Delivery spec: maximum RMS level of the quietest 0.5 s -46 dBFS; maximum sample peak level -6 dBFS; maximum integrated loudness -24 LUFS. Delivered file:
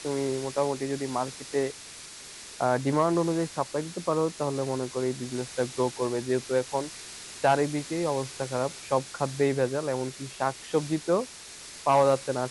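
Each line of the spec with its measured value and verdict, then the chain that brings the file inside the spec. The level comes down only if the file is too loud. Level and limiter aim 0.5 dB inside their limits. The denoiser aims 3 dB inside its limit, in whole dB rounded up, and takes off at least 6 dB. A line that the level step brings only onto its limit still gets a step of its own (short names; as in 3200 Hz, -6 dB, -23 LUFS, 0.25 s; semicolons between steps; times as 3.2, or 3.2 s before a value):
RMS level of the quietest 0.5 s -44 dBFS: fail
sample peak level -10.0 dBFS: OK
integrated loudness -28.5 LUFS: OK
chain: denoiser 6 dB, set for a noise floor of -44 dBFS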